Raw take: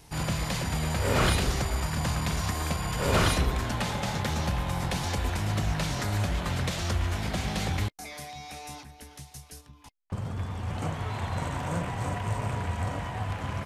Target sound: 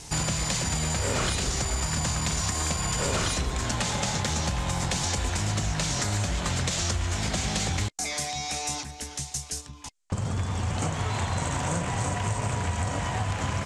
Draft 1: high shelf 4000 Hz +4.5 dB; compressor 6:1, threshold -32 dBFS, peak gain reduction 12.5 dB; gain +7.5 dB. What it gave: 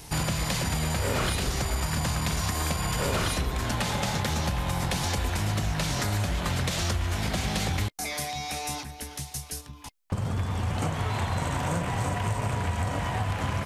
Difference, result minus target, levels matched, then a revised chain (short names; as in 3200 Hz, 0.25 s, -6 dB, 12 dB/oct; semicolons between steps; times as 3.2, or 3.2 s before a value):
8000 Hz band -4.5 dB
synth low-pass 7400 Hz, resonance Q 2.6; high shelf 4000 Hz +4.5 dB; compressor 6:1, threshold -32 dBFS, peak gain reduction 13 dB; gain +7.5 dB